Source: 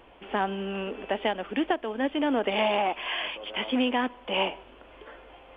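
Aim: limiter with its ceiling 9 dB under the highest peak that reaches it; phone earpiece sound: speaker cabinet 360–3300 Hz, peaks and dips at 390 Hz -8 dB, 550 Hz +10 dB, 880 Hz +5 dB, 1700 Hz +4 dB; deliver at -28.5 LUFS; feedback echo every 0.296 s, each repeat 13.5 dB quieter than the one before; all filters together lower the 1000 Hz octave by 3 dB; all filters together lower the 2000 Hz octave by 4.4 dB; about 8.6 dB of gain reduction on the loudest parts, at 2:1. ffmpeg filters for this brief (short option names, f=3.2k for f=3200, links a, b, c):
-af "equalizer=f=1k:t=o:g=-8.5,equalizer=f=2k:t=o:g=-5.5,acompressor=threshold=-39dB:ratio=2,alimiter=level_in=9dB:limit=-24dB:level=0:latency=1,volume=-9dB,highpass=360,equalizer=f=390:t=q:w=4:g=-8,equalizer=f=550:t=q:w=4:g=10,equalizer=f=880:t=q:w=4:g=5,equalizer=f=1.7k:t=q:w=4:g=4,lowpass=f=3.3k:w=0.5412,lowpass=f=3.3k:w=1.3066,aecho=1:1:296|592:0.211|0.0444,volume=13dB"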